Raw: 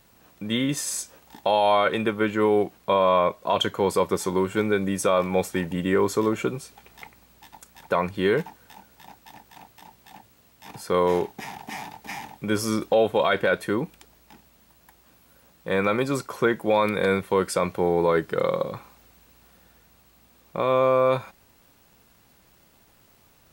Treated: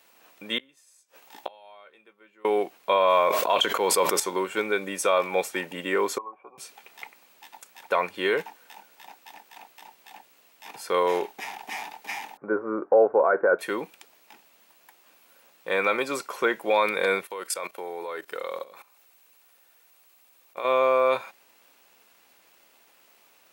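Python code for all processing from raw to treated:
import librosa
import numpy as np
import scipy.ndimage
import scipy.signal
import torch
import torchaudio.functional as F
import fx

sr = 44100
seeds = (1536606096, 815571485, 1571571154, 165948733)

y = fx.chain(x, sr, fx.gate_flip(shuts_db=-22.0, range_db=-30),
    fx.doubler(ms=15.0, db=-10), at=(0.58, 2.45))
y = fx.chain(y, sr, fx.quant_companded(bits=8),
    fx.sustainer(db_per_s=31.0), at=(3.09, 4.2))
y = fx.chain(y, sr, fx.formant_cascade(vowel='a'),
    fx.notch_comb(f0_hz=680.0),
    fx.band_squash(depth_pct=70), at=(6.18, 6.58))
y = fx.chain(y, sr, fx.ellip_lowpass(hz=1500.0, order=4, stop_db=60),
    fx.dynamic_eq(hz=400.0, q=1.5, threshold_db=-33.0, ratio=4.0, max_db=6), at=(12.37, 13.59))
y = fx.chain(y, sr, fx.highpass(hz=340.0, slope=6),
    fx.level_steps(step_db=16),
    fx.peak_eq(hz=13000.0, db=7.5, octaves=1.3), at=(17.24, 20.65))
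y = scipy.signal.sosfilt(scipy.signal.butter(2, 430.0, 'highpass', fs=sr, output='sos'), y)
y = fx.peak_eq(y, sr, hz=2500.0, db=4.5, octaves=0.6)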